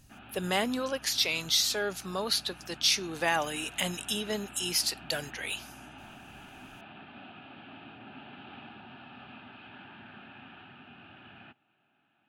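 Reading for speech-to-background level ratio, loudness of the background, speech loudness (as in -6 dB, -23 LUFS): 19.5 dB, -49.0 LUFS, -29.5 LUFS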